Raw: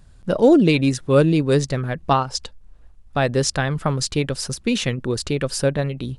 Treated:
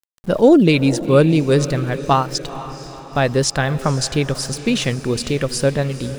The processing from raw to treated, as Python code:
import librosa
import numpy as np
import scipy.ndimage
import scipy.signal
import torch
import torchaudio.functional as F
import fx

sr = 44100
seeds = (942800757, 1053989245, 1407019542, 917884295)

y = np.where(np.abs(x) >= 10.0 ** (-39.5 / 20.0), x, 0.0)
y = fx.echo_diffused(y, sr, ms=474, feedback_pct=53, wet_db=-14.0)
y = F.gain(torch.from_numpy(y), 2.5).numpy()